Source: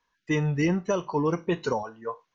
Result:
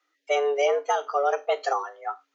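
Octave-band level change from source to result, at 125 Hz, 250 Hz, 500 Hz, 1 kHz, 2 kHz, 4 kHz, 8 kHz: under -40 dB, under -20 dB, +4.5 dB, +7.5 dB, +1.5 dB, +5.0 dB, n/a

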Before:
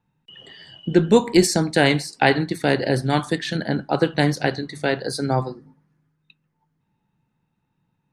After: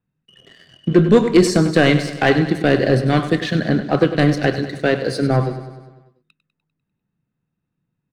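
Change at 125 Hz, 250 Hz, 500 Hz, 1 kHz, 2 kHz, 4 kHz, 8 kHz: +5.5, +5.0, +4.0, +0.5, +2.5, 0.0, -3.0 dB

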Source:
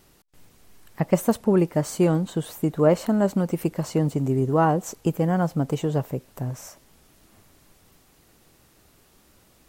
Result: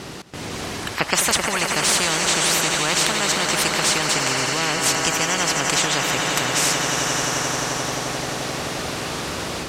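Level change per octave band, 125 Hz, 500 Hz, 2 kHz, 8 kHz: -5.5, -2.0, +19.0, +21.0 dB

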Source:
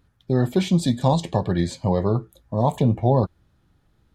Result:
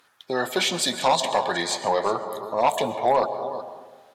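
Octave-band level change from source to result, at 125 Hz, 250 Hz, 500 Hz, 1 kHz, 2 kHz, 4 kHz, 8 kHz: -21.5, -11.0, +0.5, +5.0, +10.5, +9.0, +9.5 dB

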